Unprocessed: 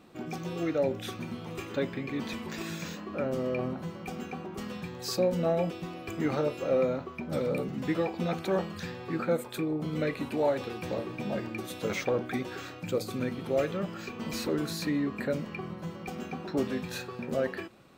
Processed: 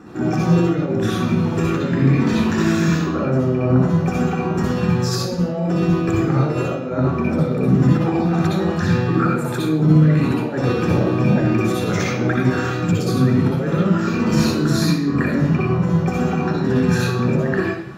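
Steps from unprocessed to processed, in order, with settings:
parametric band 11,000 Hz +12 dB 0.31 octaves
compressor whose output falls as the input rises −34 dBFS, ratio −1
convolution reverb RT60 0.70 s, pre-delay 56 ms, DRR −1.5 dB

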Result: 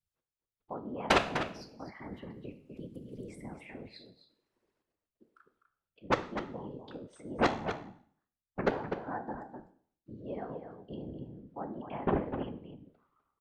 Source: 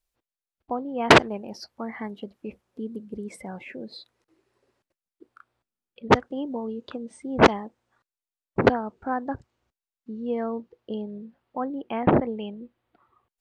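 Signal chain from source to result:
tuned comb filter 69 Hz, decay 0.53 s, harmonics all, mix 70%
slap from a distant wall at 43 metres, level −8 dB
random phases in short frames
0:02.12–0:03.89: multiband upward and downward compressor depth 70%
level −4 dB

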